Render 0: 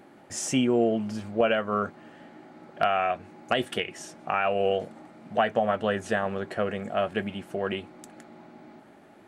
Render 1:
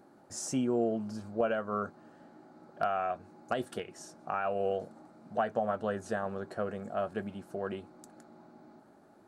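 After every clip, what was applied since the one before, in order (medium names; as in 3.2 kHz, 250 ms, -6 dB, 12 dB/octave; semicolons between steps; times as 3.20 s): high-order bell 2.5 kHz -10 dB 1.1 oct; trim -6.5 dB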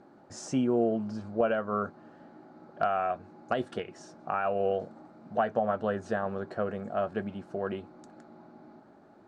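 distance through air 110 m; trim +3.5 dB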